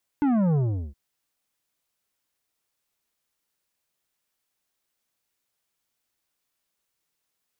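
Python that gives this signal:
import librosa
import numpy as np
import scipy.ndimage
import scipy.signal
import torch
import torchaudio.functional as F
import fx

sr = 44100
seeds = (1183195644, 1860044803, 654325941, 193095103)

y = fx.sub_drop(sr, level_db=-20, start_hz=300.0, length_s=0.72, drive_db=10.0, fade_s=0.39, end_hz=65.0)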